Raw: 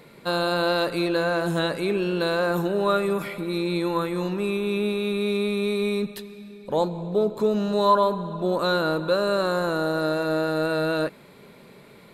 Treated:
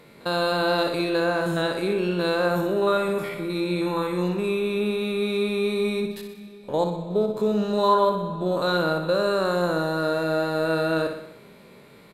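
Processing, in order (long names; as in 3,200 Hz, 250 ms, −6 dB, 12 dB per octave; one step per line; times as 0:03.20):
spectrum averaged block by block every 50 ms
repeating echo 62 ms, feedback 57%, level −8 dB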